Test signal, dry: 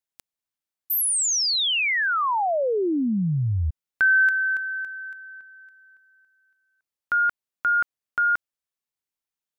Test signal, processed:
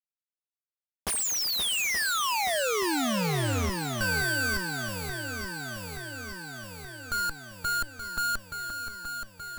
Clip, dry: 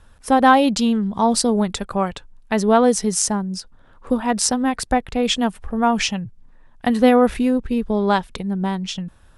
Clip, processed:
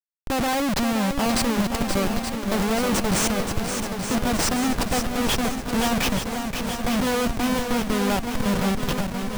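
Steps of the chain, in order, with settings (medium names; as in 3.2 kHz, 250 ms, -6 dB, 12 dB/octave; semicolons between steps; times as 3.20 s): resampled via 22.05 kHz; Schmitt trigger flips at -22 dBFS; shuffle delay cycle 876 ms, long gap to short 1.5:1, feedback 64%, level -7 dB; trim -3 dB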